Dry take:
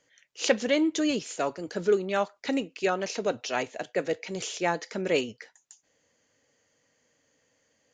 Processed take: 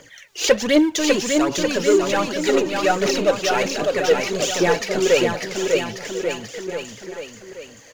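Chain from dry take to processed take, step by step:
power curve on the samples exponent 0.7
phase shifter 1.3 Hz, delay 3 ms, feedback 60%
bouncing-ball delay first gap 600 ms, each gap 0.9×, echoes 5
level +1.5 dB

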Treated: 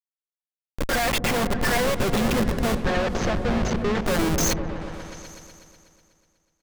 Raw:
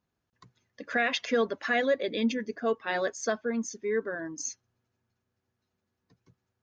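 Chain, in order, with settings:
sub-octave generator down 2 octaves, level −1 dB
comb filter 5.6 ms, depth 71%
automatic gain control gain up to 16 dB
asymmetric clip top −25 dBFS
flanger 1.2 Hz, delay 3.3 ms, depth 1.9 ms, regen +42%
comparator with hysteresis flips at −28 dBFS
0:02.80–0:04.02: high-frequency loss of the air 150 metres
on a send: echo whose low-pass opens from repeat to repeat 123 ms, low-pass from 200 Hz, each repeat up 1 octave, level −3 dB
on the sum: level +2.5 dB

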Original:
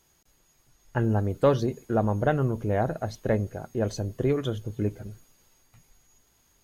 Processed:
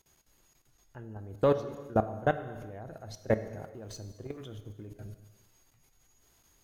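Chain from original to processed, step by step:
0:03.64–0:04.87: mu-law and A-law mismatch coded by A
output level in coarse steps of 22 dB
reverb whose tail is shaped and stops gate 440 ms falling, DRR 9.5 dB

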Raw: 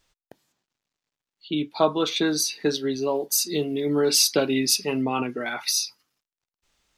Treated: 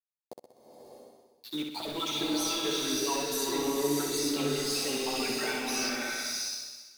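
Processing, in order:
time-frequency cells dropped at random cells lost 33%
high-pass filter 200 Hz 12 dB per octave
high-shelf EQ 2,000 Hz +6.5 dB
reversed playback
downward compressor 6 to 1, threshold −33 dBFS, peak gain reduction 20.5 dB
reversed playback
brickwall limiter −31 dBFS, peak gain reduction 10.5 dB
centre clipping without the shift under −45.5 dBFS
multi-voice chorus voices 4, 0.92 Hz, delay 11 ms, depth 3 ms
on a send: flutter between parallel walls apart 10.8 metres, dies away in 0.72 s
on the sum: slow-attack reverb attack 640 ms, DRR −1.5 dB
level +8 dB

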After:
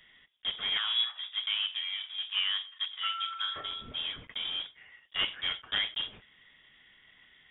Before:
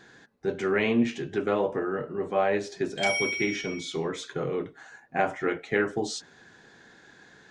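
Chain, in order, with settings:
one scale factor per block 3 bits
voice inversion scrambler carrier 3,600 Hz
0:00.77–0:03.56: Bessel high-pass filter 1,300 Hz, order 6
level −6 dB

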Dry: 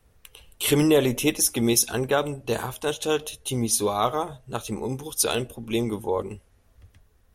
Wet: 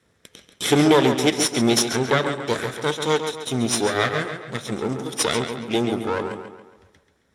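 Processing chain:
lower of the sound and its delayed copy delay 0.54 ms
band-pass filter 170–7,700 Hz
tape delay 137 ms, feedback 47%, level −6.5 dB, low-pass 5,100 Hz
level +5 dB

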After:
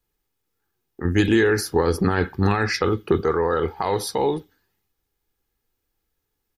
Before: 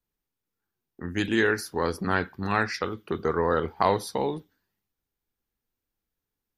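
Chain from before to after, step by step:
comb filter 2.4 ms, depth 35%
brickwall limiter −19.5 dBFS, peak gain reduction 12 dB
0:01.05–0:03.21: low-shelf EQ 410 Hz +7 dB
level +7.5 dB

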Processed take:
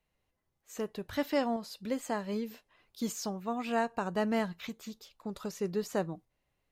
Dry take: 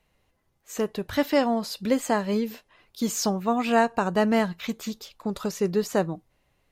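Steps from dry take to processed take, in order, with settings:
shaped tremolo saw up 0.64 Hz, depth 40%
level −7.5 dB

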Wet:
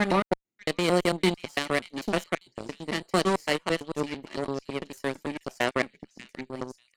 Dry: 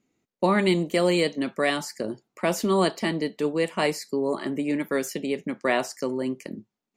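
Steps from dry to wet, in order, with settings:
slices reordered back to front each 112 ms, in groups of 6
echo through a band-pass that steps 589 ms, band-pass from 2,800 Hz, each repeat 0.7 octaves, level −3.5 dB
harmonic generator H 3 −30 dB, 7 −19 dB, 8 −37 dB, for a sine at −8 dBFS

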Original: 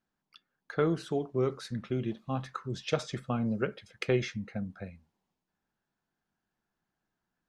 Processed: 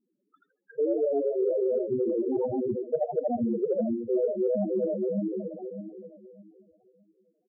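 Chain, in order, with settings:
feedback delay that plays each chunk backwards 306 ms, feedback 49%, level −3 dB
on a send at −17.5 dB: convolution reverb RT60 1.2 s, pre-delay 79 ms
on the sum: low-pass that shuts in the quiet parts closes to 1,300 Hz, open at −24 dBFS
Butterworth low-pass 6,000 Hz 36 dB per octave
parametric band 450 Hz +13.5 dB 2.6 octaves
echo with shifted repeats 80 ms, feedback 41%, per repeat +120 Hz, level −4 dB
spectral peaks only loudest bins 4
reversed playback
downward compressor 5 to 1, threshold −30 dBFS, peak gain reduction 16.5 dB
reversed playback
level +4.5 dB

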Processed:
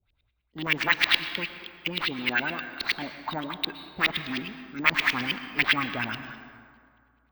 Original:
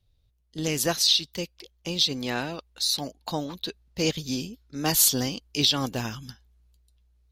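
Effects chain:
notch filter 1,800 Hz, Q 5.8
harmonic generator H 6 −22 dB, 7 −7 dB, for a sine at −8 dBFS
low-shelf EQ 140 Hz −10 dB
auto-filter low-pass saw up 9.6 Hz 360–3,200 Hz
graphic EQ with 10 bands 125 Hz −4 dB, 500 Hz −11 dB, 2,000 Hz +10 dB, 4,000 Hz +5 dB
convolution reverb RT60 2.2 s, pre-delay 103 ms, DRR 10.5 dB
bad sample-rate conversion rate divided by 2×, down filtered, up hold
level −3.5 dB

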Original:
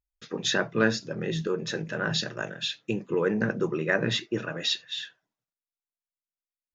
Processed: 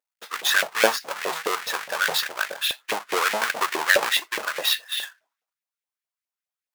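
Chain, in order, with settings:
each half-wave held at its own peak
auto-filter high-pass saw up 4.8 Hz 540–2,200 Hz
level +1.5 dB

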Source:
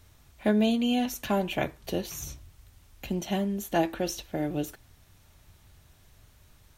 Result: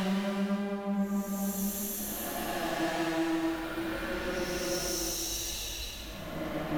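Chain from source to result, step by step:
tube saturation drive 39 dB, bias 0.4
extreme stretch with random phases 6.7×, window 0.25 s, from 0:03.36
level +8.5 dB

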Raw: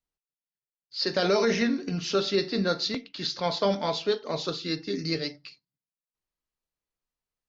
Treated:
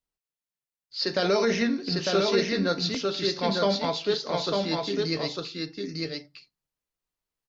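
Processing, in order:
single-tap delay 901 ms −3 dB

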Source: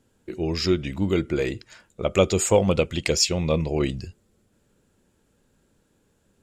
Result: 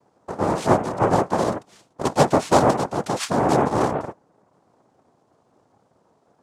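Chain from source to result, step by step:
0:02.70–0:03.19: hard clipping −23 dBFS, distortion −14 dB
spectral tilt −3 dB per octave
cochlear-implant simulation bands 2
level −1.5 dB

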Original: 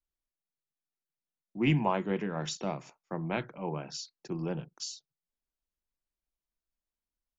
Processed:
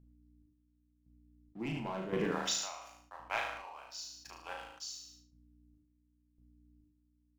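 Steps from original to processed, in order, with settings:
0:02.31–0:04.88: high-pass filter 830 Hz 24 dB per octave
leveller curve on the samples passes 2
downward compressor, threshold −23 dBFS, peak gain reduction 5 dB
mains hum 60 Hz, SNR 22 dB
square-wave tremolo 0.94 Hz, depth 65%, duty 40%
flutter between parallel walls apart 6.3 metres, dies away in 0.48 s
reverb whose tail is shaped and stops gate 230 ms falling, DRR 8.5 dB
level that may fall only so fast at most 62 dB per second
level −5 dB

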